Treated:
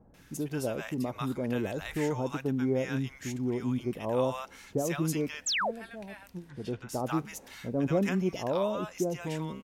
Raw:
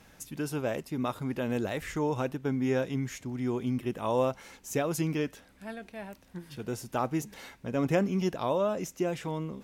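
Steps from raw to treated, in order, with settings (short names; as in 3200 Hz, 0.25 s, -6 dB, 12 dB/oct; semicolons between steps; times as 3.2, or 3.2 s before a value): 6.21–6.75 treble ducked by the level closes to 1700 Hz, closed at -29.5 dBFS; bands offset in time lows, highs 0.14 s, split 880 Hz; 5.46–5.71 painted sound fall 410–8300 Hz -29 dBFS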